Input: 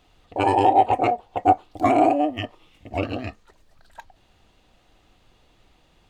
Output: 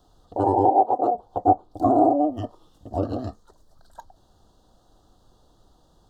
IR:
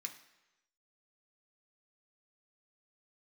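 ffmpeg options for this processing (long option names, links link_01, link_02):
-filter_complex "[0:a]asuperstop=centerf=2300:order=4:qfactor=0.88,acrossover=split=440|940[link_01][link_02][link_03];[link_03]acompressor=threshold=-44dB:ratio=6[link_04];[link_01][link_02][link_04]amix=inputs=3:normalize=0,asettb=1/sr,asplit=3[link_05][link_06][link_07];[link_05]atrim=end=0.694[link_08];[link_06]atrim=start=0.69:end=1.15,asetpts=PTS-STARTPTS,afade=type=in:duration=0.004:curve=qsin,afade=type=out:start_time=0.456:duration=0.004:curve=qsin,highpass=290[link_09];[link_07]atrim=start=1.146[link_10];[link_08][link_09]acrossfade=duration=0.004:curve1=hsin:curve2=qsin[link_11];[link_11][link_10]acrossfade=duration=0.004:curve1=qsin:curve2=hsin,volume=1dB"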